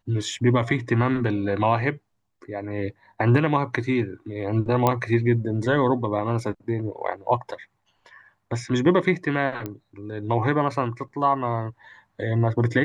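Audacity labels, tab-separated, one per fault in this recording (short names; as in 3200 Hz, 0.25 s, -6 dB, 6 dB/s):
4.870000	4.870000	pop -7 dBFS
9.660000	9.660000	pop -17 dBFS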